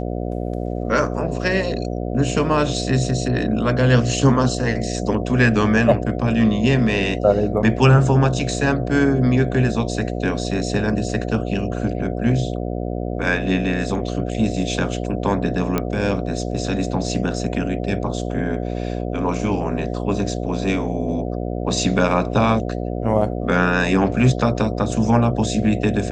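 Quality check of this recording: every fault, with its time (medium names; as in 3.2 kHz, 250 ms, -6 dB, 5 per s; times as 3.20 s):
buzz 60 Hz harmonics 12 -25 dBFS
15.78 s: pop -7 dBFS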